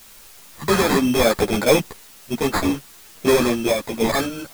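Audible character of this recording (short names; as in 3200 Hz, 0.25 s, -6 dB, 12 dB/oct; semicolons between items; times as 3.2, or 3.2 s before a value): aliases and images of a low sample rate 2900 Hz, jitter 0%; random-step tremolo, depth 65%; a quantiser's noise floor 8-bit, dither triangular; a shimmering, thickened sound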